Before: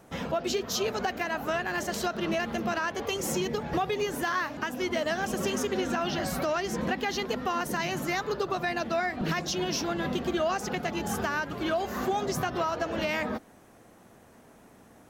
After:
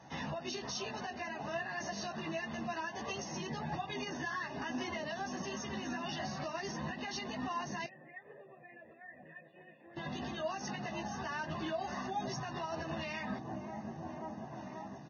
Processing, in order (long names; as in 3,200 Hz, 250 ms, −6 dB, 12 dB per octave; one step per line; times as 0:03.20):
high-pass filter 97 Hz 24 dB per octave
mains-hum notches 60/120/180/240/300/360/420/480 Hz
comb filter 1.1 ms, depth 61%
delay with a low-pass on its return 531 ms, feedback 67%, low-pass 870 Hz, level −13.5 dB
downward compressor 4 to 1, threshold −33 dBFS, peak gain reduction 9.5 dB
brickwall limiter −30.5 dBFS, peak gain reduction 8.5 dB
multi-voice chorus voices 4, 0.77 Hz, delay 14 ms, depth 1.8 ms
0:07.86–0:09.97: formant resonators in series e
level +2 dB
Ogg Vorbis 16 kbit/s 16,000 Hz